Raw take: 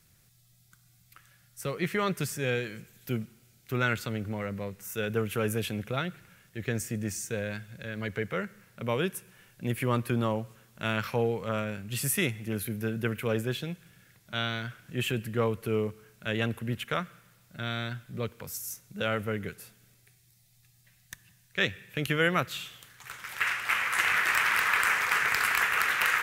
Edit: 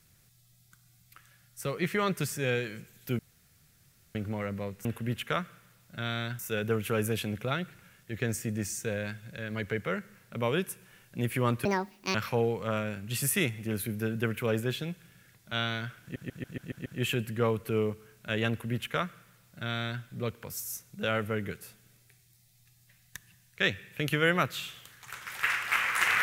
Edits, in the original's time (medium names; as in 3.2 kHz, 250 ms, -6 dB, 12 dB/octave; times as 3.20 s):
3.19–4.15 s: room tone
10.11–10.96 s: speed 171%
14.83 s: stutter 0.14 s, 7 plays
16.46–18.00 s: copy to 4.85 s